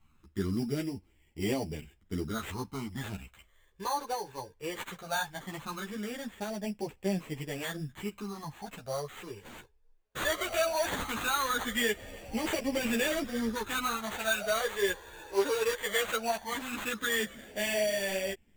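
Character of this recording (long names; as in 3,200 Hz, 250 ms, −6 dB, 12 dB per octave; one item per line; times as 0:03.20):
phaser sweep stages 12, 0.18 Hz, lowest notch 210–1,300 Hz
aliases and images of a low sample rate 5,200 Hz, jitter 0%
a shimmering, thickened sound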